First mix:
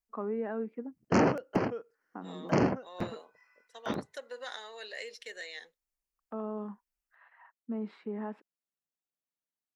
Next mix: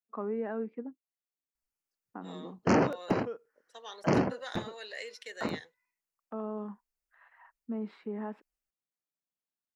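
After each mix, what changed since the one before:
background: entry +1.55 s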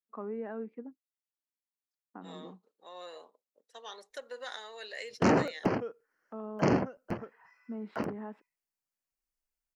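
first voice -4.0 dB; background: entry +2.55 s

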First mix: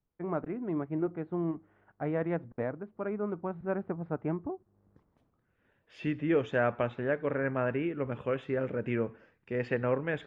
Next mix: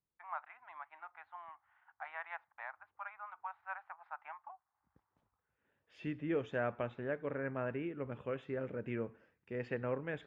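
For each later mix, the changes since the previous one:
first voice: add elliptic high-pass 830 Hz, stop band 50 dB; second voice -8.0 dB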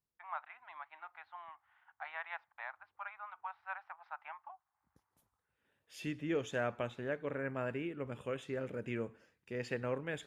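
master: remove low-pass 2.2 kHz 12 dB/octave

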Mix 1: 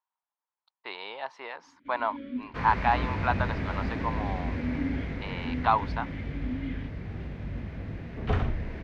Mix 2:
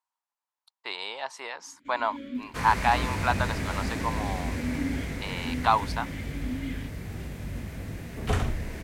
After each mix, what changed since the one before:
master: remove distance through air 280 m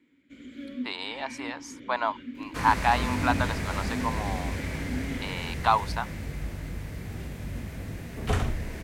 first sound: entry -1.55 s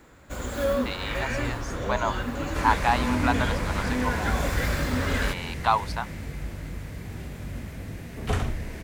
first sound: remove vowel filter i

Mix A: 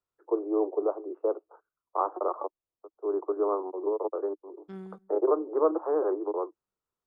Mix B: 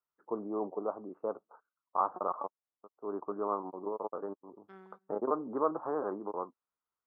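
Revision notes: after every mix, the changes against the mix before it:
first voice: remove steep high-pass 320 Hz 96 dB/octave; master: add band-pass filter 1.3 kHz, Q 1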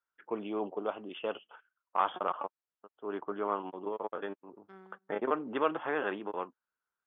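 first voice: remove elliptic low-pass 1.2 kHz, stop band 60 dB

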